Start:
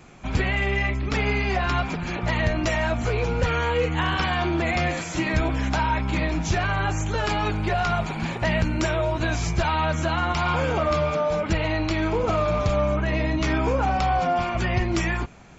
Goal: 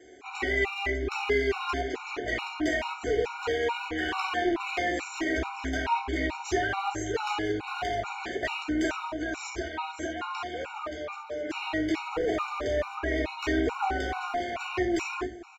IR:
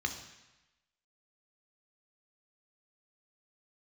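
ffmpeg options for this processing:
-filter_complex "[0:a]lowshelf=f=250:t=q:w=3:g=-13,asettb=1/sr,asplit=3[s0][s1][s2];[s0]atrim=end=9.104[s3];[s1]atrim=start=9.1:end=11.54,asetpts=PTS-STARTPTS,afade=t=in:d=0.004:c=qsin,afade=t=out:st=2.436:d=0.004:c=qsin,acompressor=threshold=0.0562:ratio=6[s4];[s2]atrim=start=11.536[s5];[s3][s4]acrossfade=d=0.004:c1=hsin:c2=qsin[s6];[s6][s5]acrossfade=d=0.004:c1=qsin:c2=hsin,aeval=exprs='clip(val(0),-1,0.075)':c=same,asplit=2[s7][s8];[s8]adelay=472.3,volume=0.126,highshelf=f=4000:g=-10.6[s9];[s7][s9]amix=inputs=2:normalize=0[s10];[1:a]atrim=start_sample=2205,atrim=end_sample=4410[s11];[s10][s11]afir=irnorm=-1:irlink=0,afftfilt=real='re*gt(sin(2*PI*2.3*pts/sr)*(1-2*mod(floor(b*sr/1024/740),2)),0)':imag='im*gt(sin(2*PI*2.3*pts/sr)*(1-2*mod(floor(b*sr/1024/740),2)),0)':win_size=1024:overlap=0.75,volume=0.562"

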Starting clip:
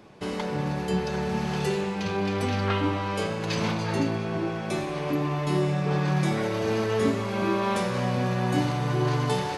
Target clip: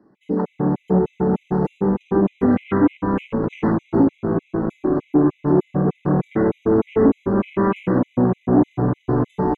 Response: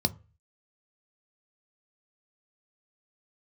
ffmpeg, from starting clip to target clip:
-filter_complex "[0:a]asplit=2[s0][s1];[s1]adelay=16,volume=0.282[s2];[s0][s2]amix=inputs=2:normalize=0,asplit=9[s3][s4][s5][s6][s7][s8][s9][s10][s11];[s4]adelay=482,afreqshift=-64,volume=0.251[s12];[s5]adelay=964,afreqshift=-128,volume=0.16[s13];[s6]adelay=1446,afreqshift=-192,volume=0.102[s14];[s7]adelay=1928,afreqshift=-256,volume=0.0661[s15];[s8]adelay=2410,afreqshift=-320,volume=0.0422[s16];[s9]adelay=2892,afreqshift=-384,volume=0.0269[s17];[s10]adelay=3374,afreqshift=-448,volume=0.0172[s18];[s11]adelay=3856,afreqshift=-512,volume=0.0111[s19];[s3][s12][s13][s14][s15][s16][s17][s18][s19]amix=inputs=9:normalize=0,asplit=2[s20][s21];[s21]alimiter=limit=0.133:level=0:latency=1:release=60,volume=1[s22];[s20][s22]amix=inputs=2:normalize=0,afwtdn=0.0501,lowshelf=f=390:t=q:w=1.5:g=10.5,asoftclip=type=tanh:threshold=0.668,acrossover=split=260 2200:gain=0.158 1 0.178[s23][s24][s25];[s23][s24][s25]amix=inputs=3:normalize=0,afftfilt=real='re*gt(sin(2*PI*3.3*pts/sr)*(1-2*mod(floor(b*sr/1024/2000),2)),0)':imag='im*gt(sin(2*PI*3.3*pts/sr)*(1-2*mod(floor(b*sr/1024/2000),2)),0)':win_size=1024:overlap=0.75,volume=1.33"

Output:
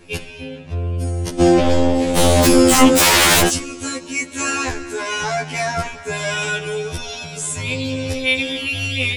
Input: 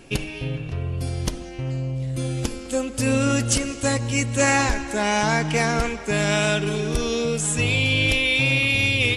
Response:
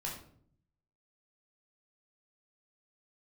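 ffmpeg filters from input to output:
-filter_complex "[0:a]asplit=3[s0][s1][s2];[s0]afade=t=out:st=1.39:d=0.02[s3];[s1]aeval=exprs='0.335*sin(PI/2*7.94*val(0)/0.335)':c=same,afade=t=in:st=1.39:d=0.02,afade=t=out:st=3.48:d=0.02[s4];[s2]afade=t=in:st=3.48:d=0.02[s5];[s3][s4][s5]amix=inputs=3:normalize=0,afftfilt=real='re*2*eq(mod(b,4),0)':imag='im*2*eq(mod(b,4),0)':win_size=2048:overlap=0.75,volume=1.33"

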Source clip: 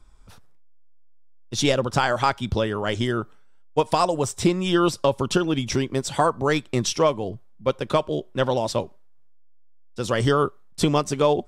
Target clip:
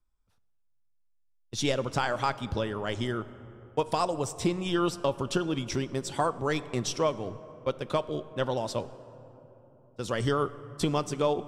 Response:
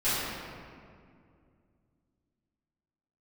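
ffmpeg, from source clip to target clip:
-filter_complex "[0:a]agate=range=0.126:threshold=0.0178:ratio=16:detection=peak,asplit=2[s0][s1];[1:a]atrim=start_sample=2205,asetrate=24255,aresample=44100[s2];[s1][s2]afir=irnorm=-1:irlink=0,volume=0.0266[s3];[s0][s3]amix=inputs=2:normalize=0,volume=0.422"

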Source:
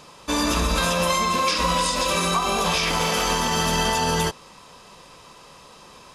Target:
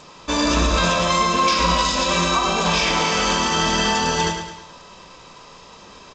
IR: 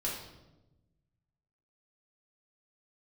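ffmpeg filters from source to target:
-filter_complex "[0:a]aecho=1:1:106|212|318|424|530:0.422|0.194|0.0892|0.041|0.0189,asplit=2[s0][s1];[1:a]atrim=start_sample=2205,afade=t=out:st=0.21:d=0.01,atrim=end_sample=9702[s2];[s1][s2]afir=irnorm=-1:irlink=0,volume=0.355[s3];[s0][s3]amix=inputs=2:normalize=0" -ar 16000 -c:a g722

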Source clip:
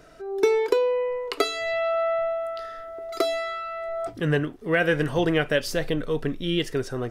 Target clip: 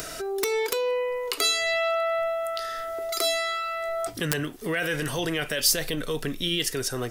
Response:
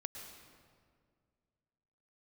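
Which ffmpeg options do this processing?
-filter_complex "[0:a]acrossover=split=380[s0][s1];[s0]aeval=exprs='(mod(7.94*val(0)+1,2)-1)/7.94':c=same[s2];[s2][s1]amix=inputs=2:normalize=0,alimiter=limit=0.112:level=0:latency=1:release=15,crystalizer=i=6.5:c=0,acompressor=mode=upward:threshold=0.0794:ratio=2.5,volume=0.708"

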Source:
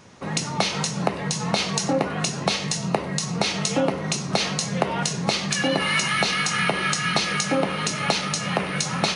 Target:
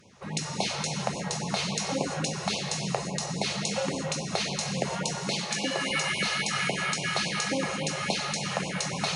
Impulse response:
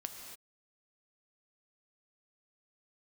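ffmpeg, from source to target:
-filter_complex "[0:a]asettb=1/sr,asplit=3[s0][s1][s2];[s0]atrim=end=5.174[s3];[s1]atrim=start=5.17:end=5.91,asetpts=PTS-STARTPTS,afade=t=in:d=0.004:c=qsin,afade=t=out:st=0.736:d=0.004:c=qsin,highpass=160[s4];[s2]atrim=start=5.906[s5];[s3][s4]acrossfade=d=0.004:c1=hsin:c2=qsin[s6];[s6][s5]acrossfade=d=0.004:c1=qsin:c2=hsin[s7];[1:a]atrim=start_sample=2205,asetrate=35721,aresample=44100[s8];[s7][s8]afir=irnorm=-1:irlink=0,afftfilt=real='re*(1-between(b*sr/1024,220*pow(1600/220,0.5+0.5*sin(2*PI*3.6*pts/sr))/1.41,220*pow(1600/220,0.5+0.5*sin(2*PI*3.6*pts/sr))*1.41))':imag='im*(1-between(b*sr/1024,220*pow(1600/220,0.5+0.5*sin(2*PI*3.6*pts/sr))/1.41,220*pow(1600/220,0.5+0.5*sin(2*PI*3.6*pts/sr))*1.41))':win_size=1024:overlap=0.75,volume=0.596"

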